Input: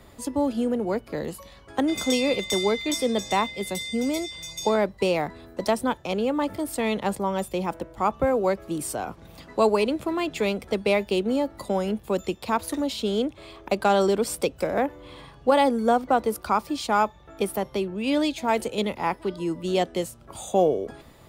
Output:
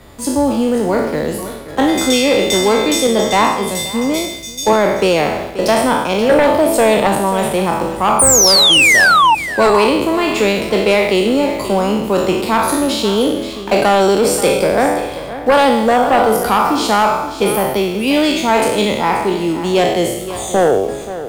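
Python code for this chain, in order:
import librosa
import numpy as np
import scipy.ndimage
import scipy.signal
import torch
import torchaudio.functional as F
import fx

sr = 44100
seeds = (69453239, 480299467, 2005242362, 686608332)

p1 = fx.spec_trails(x, sr, decay_s=0.92)
p2 = fx.peak_eq(p1, sr, hz=620.0, db=11.5, octaves=1.0, at=(6.29, 7.07))
p3 = fx.quant_dither(p2, sr, seeds[0], bits=6, dither='none')
p4 = p2 + (p3 * 10.0 ** (-11.5 / 20.0))
p5 = fx.spec_paint(p4, sr, seeds[1], shape='fall', start_s=8.19, length_s=1.16, low_hz=850.0, high_hz=9600.0, level_db=-15.0)
p6 = fx.fold_sine(p5, sr, drive_db=7, ceiling_db=-2.5)
p7 = p6 + fx.echo_single(p6, sr, ms=531, db=-13.0, dry=0)
p8 = fx.band_widen(p7, sr, depth_pct=70, at=(3.07, 4.73))
y = p8 * 10.0 ** (-3.5 / 20.0)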